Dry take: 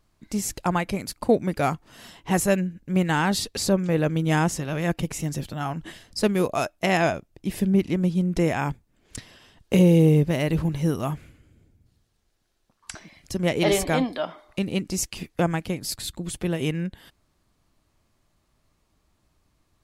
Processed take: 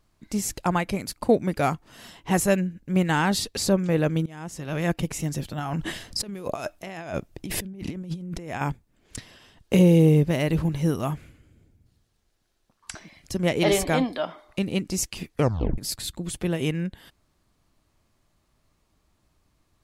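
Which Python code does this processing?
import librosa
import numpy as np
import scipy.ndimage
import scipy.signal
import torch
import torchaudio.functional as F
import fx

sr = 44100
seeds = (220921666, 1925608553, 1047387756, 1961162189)

y = fx.over_compress(x, sr, threshold_db=-33.0, ratio=-1.0, at=(5.58, 8.61))
y = fx.edit(y, sr, fx.fade_in_from(start_s=4.26, length_s=0.5, curve='qua', floor_db=-23.5),
    fx.tape_stop(start_s=15.36, length_s=0.42), tone=tone)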